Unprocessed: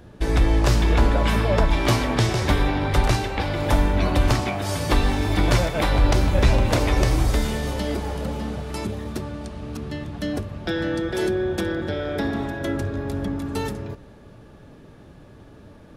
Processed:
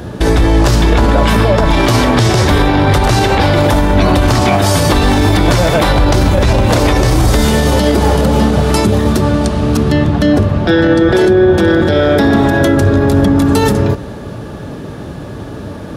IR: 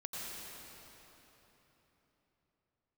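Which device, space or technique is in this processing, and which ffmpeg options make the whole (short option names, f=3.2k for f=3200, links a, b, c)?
mastering chain: -filter_complex "[0:a]highpass=58,equalizer=f=2.3k:t=o:w=0.66:g=-3.5,acompressor=threshold=-22dB:ratio=2.5,asoftclip=type=hard:threshold=-13.5dB,alimiter=level_in=22dB:limit=-1dB:release=50:level=0:latency=1,asettb=1/sr,asplit=3[a][b][c];[a]atrim=end=9.924[d];[b]atrim=start=9.92:end=11.68,asetpts=PTS-STARTPTS,afade=t=in:d=0.004:c=qsin,afade=t=out:st=1.756:d=0.004:c=qsin,aemphasis=mode=reproduction:type=cd[e];[c]atrim=start=11.676[f];[d][e]acrossfade=d=0.004:c1=hsin:c2=qsin[g];[g][f]acrossfade=d=0.004:c1=qsin:c2=hsin,volume=-1dB"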